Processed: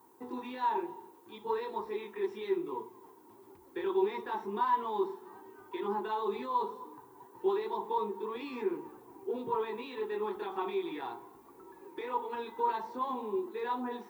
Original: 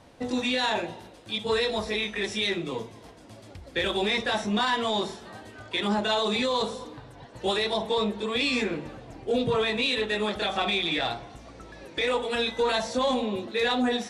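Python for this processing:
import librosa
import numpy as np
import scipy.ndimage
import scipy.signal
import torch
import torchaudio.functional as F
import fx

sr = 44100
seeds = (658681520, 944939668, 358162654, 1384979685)

y = fx.double_bandpass(x, sr, hz=600.0, octaves=1.3)
y = fx.dmg_noise_colour(y, sr, seeds[0], colour='violet', level_db=-71.0)
y = y * 10.0 ** (2.0 / 20.0)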